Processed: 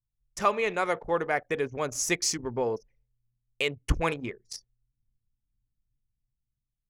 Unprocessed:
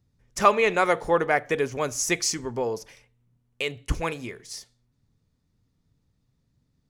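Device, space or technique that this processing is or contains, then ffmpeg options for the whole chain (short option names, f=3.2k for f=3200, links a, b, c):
voice memo with heavy noise removal: -af "anlmdn=3.98,dynaudnorm=f=650:g=5:m=9dB,volume=-6.5dB"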